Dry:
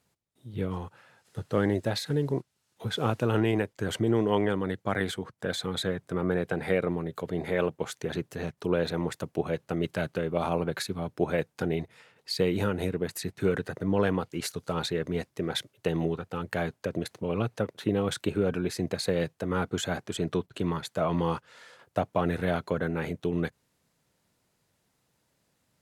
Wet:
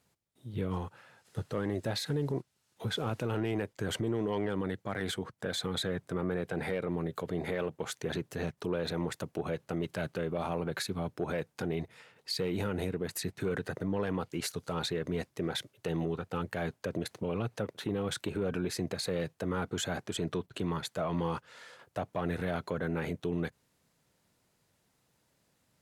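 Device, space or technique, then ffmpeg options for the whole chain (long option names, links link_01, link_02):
soft clipper into limiter: -af "asoftclip=type=tanh:threshold=-16dB,alimiter=level_in=0.5dB:limit=-24dB:level=0:latency=1:release=69,volume=-0.5dB"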